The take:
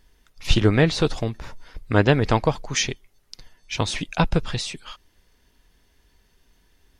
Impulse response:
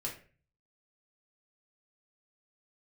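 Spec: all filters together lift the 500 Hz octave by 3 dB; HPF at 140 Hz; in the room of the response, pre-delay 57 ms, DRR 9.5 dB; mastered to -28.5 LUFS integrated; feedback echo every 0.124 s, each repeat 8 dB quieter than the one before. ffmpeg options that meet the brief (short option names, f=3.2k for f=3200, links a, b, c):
-filter_complex "[0:a]highpass=140,equalizer=f=500:t=o:g=3.5,aecho=1:1:124|248|372|496|620:0.398|0.159|0.0637|0.0255|0.0102,asplit=2[a][b];[1:a]atrim=start_sample=2205,adelay=57[c];[b][c]afir=irnorm=-1:irlink=0,volume=-10.5dB[d];[a][d]amix=inputs=2:normalize=0,volume=-7.5dB"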